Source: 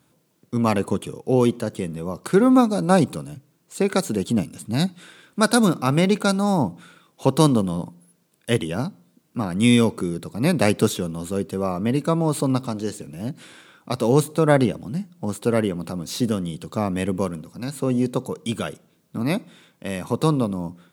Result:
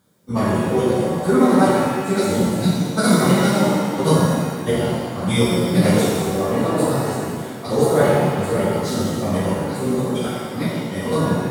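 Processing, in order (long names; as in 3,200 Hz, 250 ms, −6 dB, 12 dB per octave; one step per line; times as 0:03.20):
notch filter 2,600 Hz, Q 5.4
time stretch by phase vocoder 0.55×
reverb with rising layers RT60 1.7 s, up +7 semitones, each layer −8 dB, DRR −7.5 dB
level −1 dB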